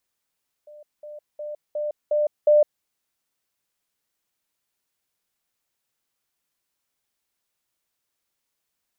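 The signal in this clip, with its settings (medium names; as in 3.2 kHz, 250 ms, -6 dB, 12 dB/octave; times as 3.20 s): level ladder 597 Hz -42 dBFS, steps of 6 dB, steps 6, 0.16 s 0.20 s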